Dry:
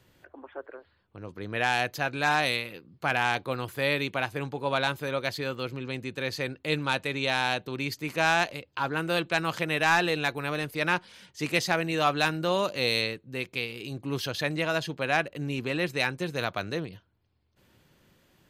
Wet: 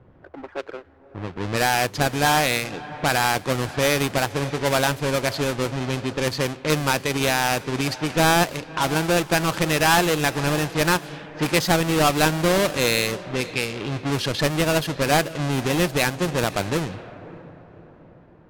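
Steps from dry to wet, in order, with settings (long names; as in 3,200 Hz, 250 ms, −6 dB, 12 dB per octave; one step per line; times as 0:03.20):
each half-wave held at its own peak
in parallel at −1 dB: downward compressor, threshold −29 dBFS, peak gain reduction 12.5 dB
on the sum: feedback delay with all-pass diffusion 596 ms, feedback 40%, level −16 dB
low-pass that shuts in the quiet parts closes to 1,100 Hz, open at −18.5 dBFS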